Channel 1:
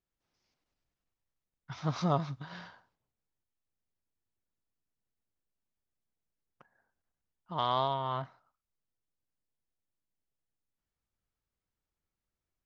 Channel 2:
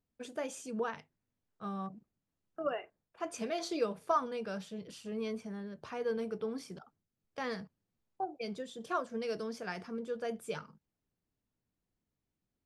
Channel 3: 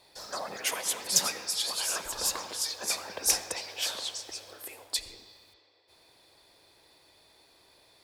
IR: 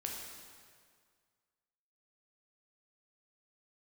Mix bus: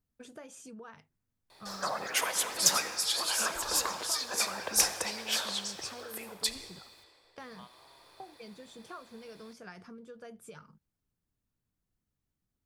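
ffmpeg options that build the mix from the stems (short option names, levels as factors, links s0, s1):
-filter_complex "[0:a]aemphasis=mode=production:type=bsi,volume=0.112,asplit=2[s0][s1];[s1]volume=0.141[s2];[1:a]highshelf=f=4000:g=8,volume=0.501,asplit=2[s3][s4];[2:a]adelay=1500,volume=0.841,asplit=2[s5][s6];[s6]volume=0.224[s7];[s4]apad=whole_len=558173[s8];[s0][s8]sidechaingate=range=0.0224:threshold=0.00282:ratio=16:detection=peak[s9];[s9][s3]amix=inputs=2:normalize=0,lowshelf=f=210:g=11.5,acompressor=threshold=0.00501:ratio=8,volume=1[s10];[3:a]atrim=start_sample=2205[s11];[s2][s7]amix=inputs=2:normalize=0[s12];[s12][s11]afir=irnorm=-1:irlink=0[s13];[s5][s10][s13]amix=inputs=3:normalize=0,equalizer=f=1300:w=1.1:g=5.5"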